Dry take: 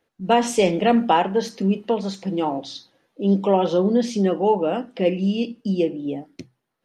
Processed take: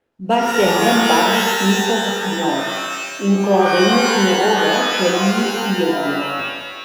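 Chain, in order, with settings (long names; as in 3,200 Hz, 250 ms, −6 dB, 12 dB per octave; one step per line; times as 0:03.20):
running median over 9 samples
reverb with rising layers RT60 1.4 s, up +12 semitones, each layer −2 dB, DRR 0 dB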